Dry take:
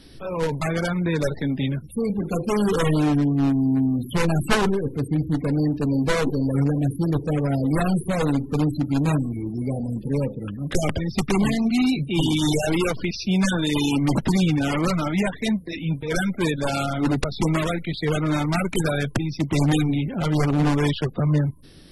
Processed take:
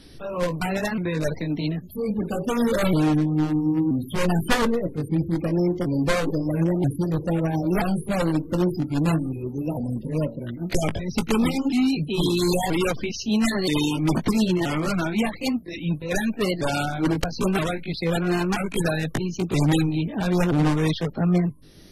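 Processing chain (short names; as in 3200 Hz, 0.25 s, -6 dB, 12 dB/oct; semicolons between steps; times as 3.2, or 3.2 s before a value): repeated pitch sweeps +3.5 st, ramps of 0.977 s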